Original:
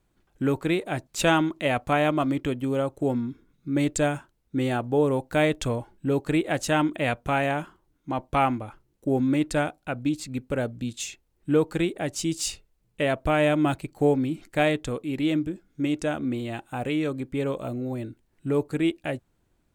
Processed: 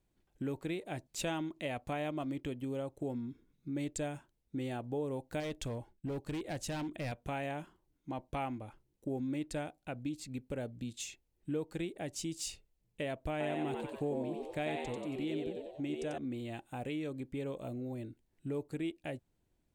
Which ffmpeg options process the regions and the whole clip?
ffmpeg -i in.wav -filter_complex "[0:a]asettb=1/sr,asplit=3[link_01][link_02][link_03];[link_01]atrim=end=5.404[link_04];[link_02]atrim=start=5.4:end=7.12,asetpts=PTS-STARTPTS,afade=type=in:duration=0.004:curve=qsin,afade=type=out:start_time=1.716:duration=0.004:curve=qsin,asoftclip=type=hard:threshold=-22.5dB,agate=range=-33dB:threshold=-51dB:ratio=3:release=100:detection=peak,asubboost=boost=3:cutoff=190[link_05];[link_03]atrim=start=7.116[link_06];[link_04][link_05]acrossfade=duration=0.004:curve1=hsin:curve2=qsin[link_07];[link_07][link_06]acrossfade=duration=0.004:curve1=qsin:curve2=hsin,asettb=1/sr,asplit=3[link_08][link_09][link_10];[link_08]atrim=end=13.314[link_11];[link_09]atrim=start=13.31:end=16.18,asetpts=PTS-STARTPTS,afade=type=in:duration=0.004:curve=qsin,afade=type=out:start_time=2.866:duration=0.004:curve=qsin,highshelf=frequency=10000:gain=-5,asplit=7[link_12][link_13][link_14][link_15][link_16][link_17][link_18];[link_13]adelay=92,afreqshift=88,volume=-4dB[link_19];[link_14]adelay=184,afreqshift=176,volume=-10.6dB[link_20];[link_15]adelay=276,afreqshift=264,volume=-17.1dB[link_21];[link_16]adelay=368,afreqshift=352,volume=-23.7dB[link_22];[link_17]adelay=460,afreqshift=440,volume=-30.2dB[link_23];[link_18]adelay=552,afreqshift=528,volume=-36.8dB[link_24];[link_12][link_19][link_20][link_21][link_22][link_23][link_24]amix=inputs=7:normalize=0,atrim=end_sample=126567[link_25];[link_10]atrim=start=16.176[link_26];[link_11][link_25]acrossfade=duration=0.004:curve1=hsin:curve2=qsin[link_27];[link_27][link_26]acrossfade=duration=0.004:curve1=qsin:curve2=hsin,equalizer=frequency=1300:width=2:gain=-6.5,acompressor=threshold=-30dB:ratio=2,volume=-8dB" out.wav

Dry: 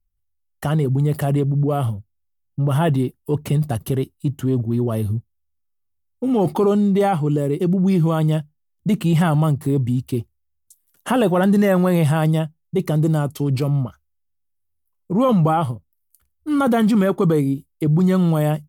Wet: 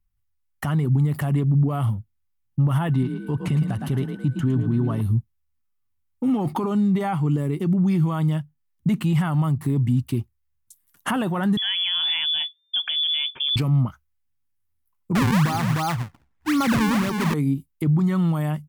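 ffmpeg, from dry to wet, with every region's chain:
ffmpeg -i in.wav -filter_complex "[0:a]asettb=1/sr,asplit=3[link_01][link_02][link_03];[link_01]atrim=end=2.914[link_04];[link_02]atrim=start=2.91:end=5.01,asetpts=PTS-STARTPTS,afade=type=in:duration=0.004:curve=qsin,afade=type=out:start_time=2.096:duration=0.004:curve=qsin,adynamicsmooth=sensitivity=6.5:basefreq=7300,aeval=exprs='val(0)+0.00282*sin(2*PI*1500*n/s)':channel_layout=same,asplit=5[link_05][link_06][link_07][link_08][link_09];[link_06]adelay=110,afreqshift=36,volume=-8dB[link_10];[link_07]adelay=220,afreqshift=72,volume=-17.6dB[link_11];[link_08]adelay=330,afreqshift=108,volume=-27.3dB[link_12];[link_09]adelay=440,afreqshift=144,volume=-36.9dB[link_13];[link_05][link_10][link_11][link_12][link_13]amix=inputs=5:normalize=0,atrim=end_sample=92610[link_14];[link_03]atrim=start=5.006[link_15];[link_04][link_14]acrossfade=duration=0.004:curve1=hsin:curve2=qsin[link_16];[link_16][link_15]acrossfade=duration=0.004:curve1=qsin:curve2=hsin,asettb=1/sr,asplit=3[link_17][link_18][link_19];[link_17]atrim=end=11.574[link_20];[link_18]atrim=start=11.57:end=13.56,asetpts=PTS-STARTPTS,afade=type=in:duration=0.004:curve=qsin,afade=type=out:start_time=1.986:duration=0.004:curve=qsin,acompressor=threshold=-23dB:ratio=2:attack=3.2:release=140:knee=1:detection=peak,lowpass=frequency=3100:width_type=q:width=0.5098,lowpass=frequency=3100:width_type=q:width=0.6013,lowpass=frequency=3100:width_type=q:width=0.9,lowpass=frequency=3100:width_type=q:width=2.563,afreqshift=-3600[link_21];[link_19]atrim=start=13.556[link_22];[link_20][link_21]acrossfade=duration=0.004:curve1=hsin:curve2=qsin[link_23];[link_23][link_22]acrossfade=duration=0.004:curve1=qsin:curve2=hsin,asettb=1/sr,asplit=3[link_24][link_25][link_26];[link_24]atrim=end=15.154[link_27];[link_25]atrim=start=15.15:end=17.34,asetpts=PTS-STARTPTS,afade=type=in:duration=0.004:curve=qsin,afade=type=out:start_time=2.186:duration=0.004:curve=qsin,acrusher=samples=39:mix=1:aa=0.000001:lfo=1:lforange=62.4:lforate=1.9,aecho=1:1:305:0.447,atrim=end_sample=96579[link_28];[link_26]atrim=start=17.336[link_29];[link_27][link_28]acrossfade=duration=0.004:curve1=hsin:curve2=qsin[link_30];[link_30][link_29]acrossfade=duration=0.004:curve1=qsin:curve2=hsin,alimiter=limit=-18dB:level=0:latency=1:release=300,equalizer=frequency=125:width_type=o:width=1:gain=5,equalizer=frequency=250:width_type=o:width=1:gain=4,equalizer=frequency=500:width_type=o:width=1:gain=-7,equalizer=frequency=1000:width_type=o:width=1:gain=6,equalizer=frequency=2000:width_type=o:width=1:gain=5" out.wav

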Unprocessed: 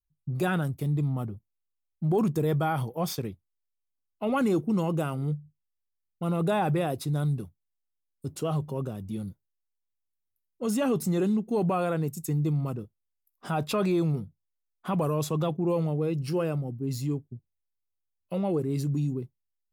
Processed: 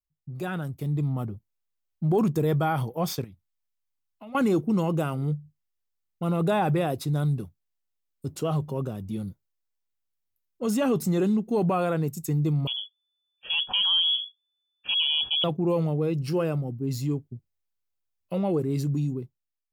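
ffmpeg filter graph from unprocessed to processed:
ffmpeg -i in.wav -filter_complex "[0:a]asettb=1/sr,asplit=3[link_01][link_02][link_03];[link_01]atrim=end=3.244[link_04];[link_02]atrim=start=3.24:end=4.35,asetpts=PTS-STARTPTS,afade=type=in:duration=0.004:curve=qsin,afade=type=out:start_time=1.106:duration=0.004:curve=qsin,equalizer=frequency=410:width=2.7:gain=-14.5,acompressor=threshold=-47dB:ratio=3:attack=3.2:release=140:knee=1:detection=peak[link_05];[link_03]atrim=start=4.346[link_06];[link_04][link_05]acrossfade=duration=0.004:curve1=hsin:curve2=qsin[link_07];[link_07][link_06]acrossfade=duration=0.004:curve1=qsin:curve2=hsin,asettb=1/sr,asplit=3[link_08][link_09][link_10];[link_08]atrim=end=12.674[link_11];[link_09]atrim=start=12.67:end=15.44,asetpts=PTS-STARTPTS,afade=type=in:duration=0.004:curve=qsin,afade=type=out:start_time=2.766:duration=0.004:curve=qsin,lowpass=frequency=3000:width_type=q:width=0.5098,lowpass=frequency=3000:width_type=q:width=0.6013,lowpass=frequency=3000:width_type=q:width=0.9,lowpass=frequency=3000:width_type=q:width=2.563,afreqshift=-3500,asuperstop=centerf=2100:order=4:qfactor=2.9[link_12];[link_10]atrim=start=15.436[link_13];[link_11][link_12]acrossfade=duration=0.004:curve1=hsin:curve2=qsin[link_14];[link_14][link_13]acrossfade=duration=0.004:curve1=qsin:curve2=hsin,equalizer=frequency=9800:width_type=o:width=0.33:gain=-4,dynaudnorm=framelen=330:gausssize=5:maxgain=8.5dB,volume=-6.5dB" out.wav

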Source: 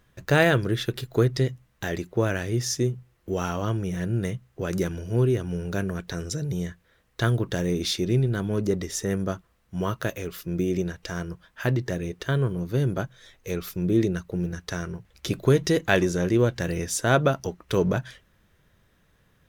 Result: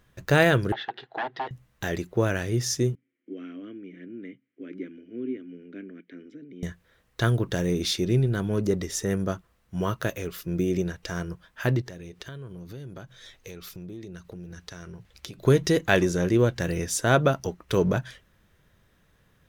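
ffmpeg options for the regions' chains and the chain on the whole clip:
ffmpeg -i in.wav -filter_complex "[0:a]asettb=1/sr,asplit=3[link_01][link_02][link_03];[link_01]atrim=end=0.724[link_04];[link_02]atrim=start=0.72:end=1.51,asetpts=PTS-STARTPTS,afade=type=in:duration=0.004:curve=qsin,afade=type=out:start_time=0.786:duration=0.004:curve=qsin,aeval=exprs='0.0708*(abs(mod(val(0)/0.0708+3,4)-2)-1)':channel_layout=same,highpass=480,equalizer=frequency=540:width_type=q:width=4:gain=-6,equalizer=frequency=790:width_type=q:width=4:gain=10,equalizer=frequency=1200:width_type=q:width=4:gain=-6,equalizer=frequency=1700:width_type=q:width=4:gain=4,equalizer=frequency=2400:width_type=q:width=4:gain=-7,lowpass=frequency=3300:width=0.5412,lowpass=frequency=3300:width=1.3066[link_05];[link_03]atrim=start=1.506[link_06];[link_04][link_05]acrossfade=duration=0.004:curve1=hsin:curve2=qsin[link_07];[link_07][link_06]acrossfade=duration=0.004:curve1=qsin:curve2=hsin,asettb=1/sr,asplit=3[link_08][link_09][link_10];[link_08]atrim=end=2.954[link_11];[link_09]atrim=start=2.95:end=6.63,asetpts=PTS-STARTPTS,afade=type=in:duration=0.004:curve=qsin,afade=type=out:start_time=3.676:duration=0.004:curve=qsin,acrossover=split=240 2300:gain=0.0891 1 0.0794[link_12][link_13][link_14];[link_12][link_13][link_14]amix=inputs=3:normalize=0,acontrast=52,asplit=3[link_15][link_16][link_17];[link_15]bandpass=frequency=270:width_type=q:width=8,volume=0dB[link_18];[link_16]bandpass=frequency=2290:width_type=q:width=8,volume=-6dB[link_19];[link_17]bandpass=frequency=3010:width_type=q:width=8,volume=-9dB[link_20];[link_18][link_19][link_20]amix=inputs=3:normalize=0[link_21];[link_10]atrim=start=6.626[link_22];[link_11][link_21]acrossfade=duration=0.004:curve1=hsin:curve2=qsin[link_23];[link_23][link_22]acrossfade=duration=0.004:curve1=qsin:curve2=hsin,asettb=1/sr,asplit=3[link_24][link_25][link_26];[link_24]atrim=end=11.814[link_27];[link_25]atrim=start=11.81:end=15.45,asetpts=PTS-STARTPTS,afade=type=in:duration=0.004:curve=qsin,afade=type=out:start_time=3.636:duration=0.004:curve=qsin,equalizer=frequency=4100:width_type=o:width=1.6:gain=4.5,acompressor=threshold=-38dB:ratio=6:attack=3.2:release=140:knee=1:detection=peak[link_28];[link_26]atrim=start=15.446[link_29];[link_27][link_28]acrossfade=duration=0.004:curve1=hsin:curve2=qsin[link_30];[link_30][link_29]acrossfade=duration=0.004:curve1=qsin:curve2=hsin" out.wav

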